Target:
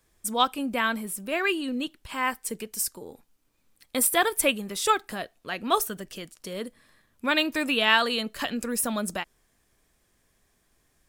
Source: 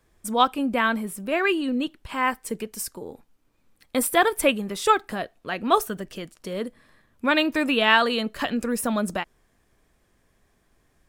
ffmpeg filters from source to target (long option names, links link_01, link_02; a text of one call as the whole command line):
ffmpeg -i in.wav -af "highshelf=frequency=3000:gain=9.5,volume=-5dB" out.wav